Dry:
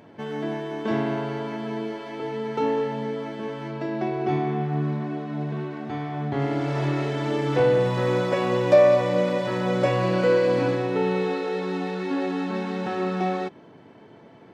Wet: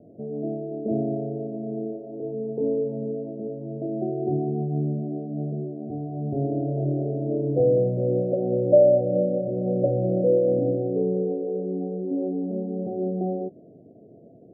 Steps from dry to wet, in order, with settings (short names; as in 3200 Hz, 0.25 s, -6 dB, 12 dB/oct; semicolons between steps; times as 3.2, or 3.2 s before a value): steep low-pass 700 Hz 96 dB/oct